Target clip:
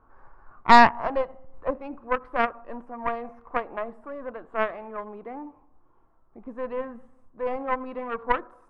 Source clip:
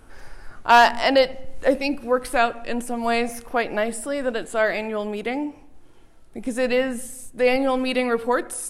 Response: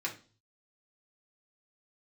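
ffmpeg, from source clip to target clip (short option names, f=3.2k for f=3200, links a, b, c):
-af "lowpass=f=1.1k:t=q:w=5.1,aeval=exprs='1.78*(cos(1*acos(clip(val(0)/1.78,-1,1)))-cos(1*PI/2))+0.447*(cos(4*acos(clip(val(0)/1.78,-1,1)))-cos(4*PI/2))+0.1*(cos(7*acos(clip(val(0)/1.78,-1,1)))-cos(7*PI/2))':c=same,volume=-8.5dB"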